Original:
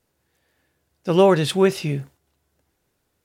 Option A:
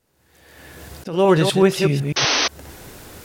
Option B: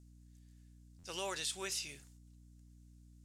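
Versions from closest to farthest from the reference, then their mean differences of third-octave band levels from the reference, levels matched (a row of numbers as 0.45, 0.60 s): A, B; 5.5, 10.0 dB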